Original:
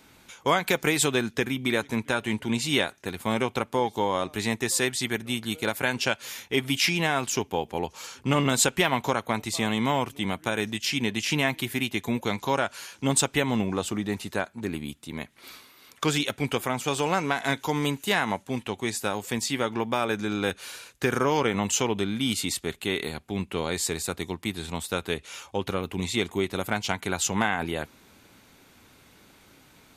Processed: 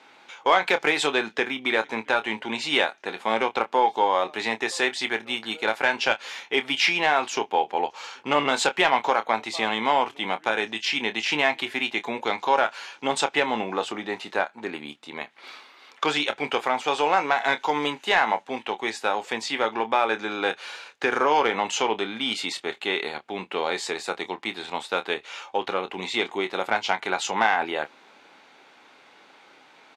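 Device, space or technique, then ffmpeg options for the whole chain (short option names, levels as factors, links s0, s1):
intercom: -filter_complex "[0:a]highpass=460,lowpass=3700,equalizer=f=820:t=o:w=0.25:g=5.5,asoftclip=type=tanh:threshold=0.266,asplit=2[s0][s1];[s1]adelay=27,volume=0.282[s2];[s0][s2]amix=inputs=2:normalize=0,volume=1.78"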